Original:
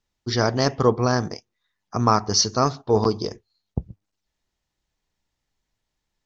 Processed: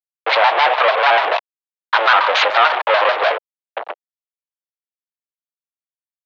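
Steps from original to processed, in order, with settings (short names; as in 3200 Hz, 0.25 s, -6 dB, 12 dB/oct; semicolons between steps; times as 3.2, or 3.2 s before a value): median filter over 9 samples; compressor 6:1, threshold -23 dBFS, peak gain reduction 11 dB; fuzz box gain 47 dB, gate -48 dBFS; mistuned SSB +140 Hz 490–3600 Hz; shaped vibrato square 6.8 Hz, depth 160 cents; gain +5.5 dB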